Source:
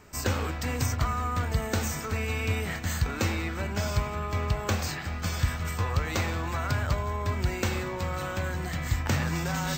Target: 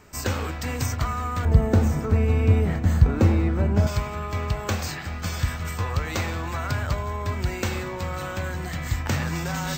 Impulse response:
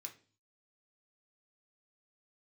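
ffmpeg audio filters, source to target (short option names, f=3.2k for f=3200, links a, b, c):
-filter_complex "[0:a]asettb=1/sr,asplit=3[a][b][c];[a]atrim=end=1.454[d];[b]atrim=start=1.45:end=3.87,asetpts=PTS-STARTPTS,afade=t=in:d=0.004:c=qsin,afade=t=out:st=2.416:d=0.004:c=qsin,tiltshelf=f=1.1k:g=10[e];[c]atrim=start=3.866[f];[d][e]acrossfade=d=0.004:c1=hsin:c2=qsin[g];[g][f]acrossfade=d=0.004:c1=qsin:c2=hsin,volume=1.5dB"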